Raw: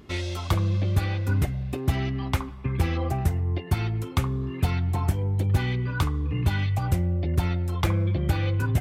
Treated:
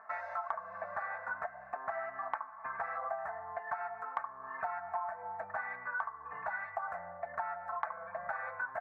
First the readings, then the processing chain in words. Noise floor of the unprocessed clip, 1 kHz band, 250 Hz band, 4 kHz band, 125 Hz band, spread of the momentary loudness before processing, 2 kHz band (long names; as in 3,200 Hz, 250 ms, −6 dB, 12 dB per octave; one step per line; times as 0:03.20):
−36 dBFS, −0.5 dB, −35.5 dB, below −30 dB, below −40 dB, 4 LU, −3.0 dB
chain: elliptic band-pass filter 660–1,700 Hz, stop band 40 dB
notch filter 1,000 Hz, Q 23
comb filter 4.5 ms, depth 59%
downward compressor 4 to 1, threshold −43 dBFS, peak gain reduction 14.5 dB
level +7.5 dB